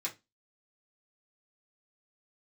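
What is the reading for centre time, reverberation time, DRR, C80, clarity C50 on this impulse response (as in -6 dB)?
13 ms, 0.20 s, -5.0 dB, 25.5 dB, 16.0 dB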